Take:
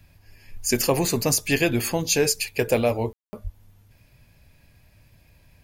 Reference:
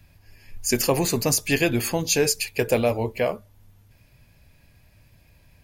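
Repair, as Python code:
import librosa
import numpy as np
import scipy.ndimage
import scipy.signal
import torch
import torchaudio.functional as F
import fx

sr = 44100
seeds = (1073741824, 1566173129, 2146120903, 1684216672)

y = fx.highpass(x, sr, hz=140.0, slope=24, at=(3.43, 3.55), fade=0.02)
y = fx.fix_ambience(y, sr, seeds[0], print_start_s=3.96, print_end_s=4.46, start_s=3.13, end_s=3.33)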